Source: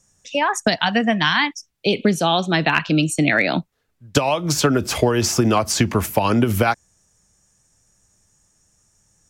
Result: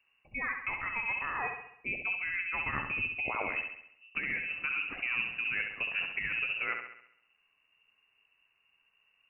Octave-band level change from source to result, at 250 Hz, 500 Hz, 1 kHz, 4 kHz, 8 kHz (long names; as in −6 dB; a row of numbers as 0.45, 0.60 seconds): −30.5 dB, −27.0 dB, −18.0 dB, −22.0 dB, below −40 dB